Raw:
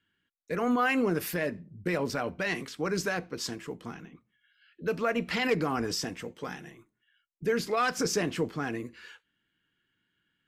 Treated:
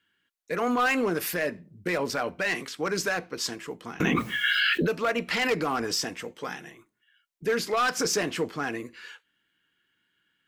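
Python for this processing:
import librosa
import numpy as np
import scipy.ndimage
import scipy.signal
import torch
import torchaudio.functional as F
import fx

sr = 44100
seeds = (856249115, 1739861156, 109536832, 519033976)

y = fx.low_shelf(x, sr, hz=270.0, db=-10.5)
y = np.clip(y, -10.0 ** (-24.5 / 20.0), 10.0 ** (-24.5 / 20.0))
y = fx.env_flatten(y, sr, amount_pct=100, at=(4.0, 4.91))
y = y * 10.0 ** (5.0 / 20.0)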